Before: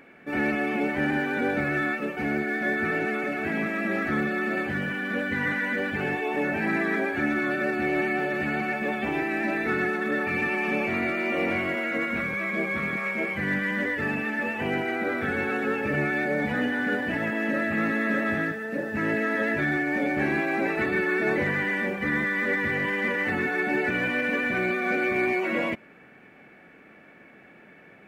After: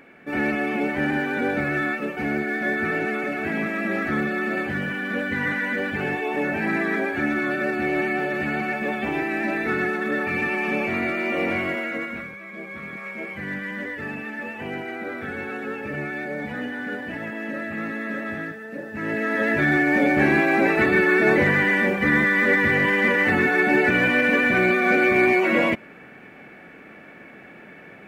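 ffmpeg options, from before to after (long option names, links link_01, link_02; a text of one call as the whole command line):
ffmpeg -i in.wav -af "volume=20dB,afade=type=out:start_time=11.69:duration=0.7:silence=0.223872,afade=type=in:start_time=12.39:duration=0.98:silence=0.446684,afade=type=in:start_time=18.94:duration=0.89:silence=0.281838" out.wav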